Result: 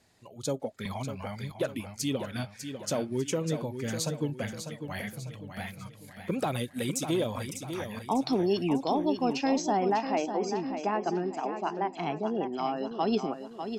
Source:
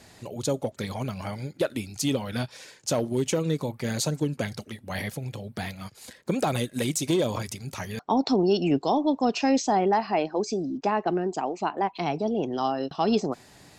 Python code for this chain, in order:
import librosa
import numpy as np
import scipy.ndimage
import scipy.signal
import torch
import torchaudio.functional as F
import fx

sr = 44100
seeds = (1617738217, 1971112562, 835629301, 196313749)

y = fx.noise_reduce_blind(x, sr, reduce_db=10)
y = fx.echo_feedback(y, sr, ms=598, feedback_pct=42, wet_db=-8.5)
y = fx.band_squash(y, sr, depth_pct=100, at=(0.85, 1.52))
y = y * 10.0 ** (-4.5 / 20.0)